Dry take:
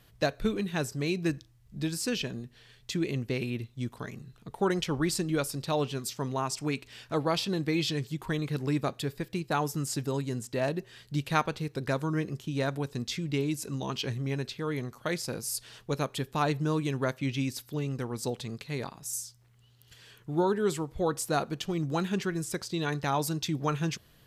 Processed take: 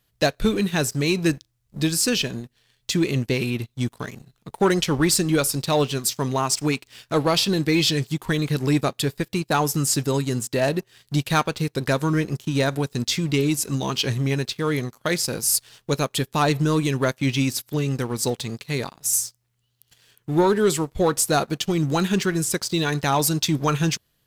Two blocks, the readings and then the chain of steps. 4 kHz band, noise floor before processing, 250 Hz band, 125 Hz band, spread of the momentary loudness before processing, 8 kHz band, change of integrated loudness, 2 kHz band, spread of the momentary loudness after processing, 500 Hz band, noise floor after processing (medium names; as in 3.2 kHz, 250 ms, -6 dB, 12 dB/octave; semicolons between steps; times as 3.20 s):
+11.0 dB, -60 dBFS, +8.5 dB, +8.0 dB, 7 LU, +13.0 dB, +9.0 dB, +9.0 dB, 7 LU, +8.0 dB, -70 dBFS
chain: treble shelf 3.6 kHz +7 dB; waveshaping leveller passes 2; in parallel at +2.5 dB: peak limiter -18 dBFS, peak gain reduction 8.5 dB; on the sum: bit crusher 11-bit; upward expansion 1.5:1, over -36 dBFS; trim -2.5 dB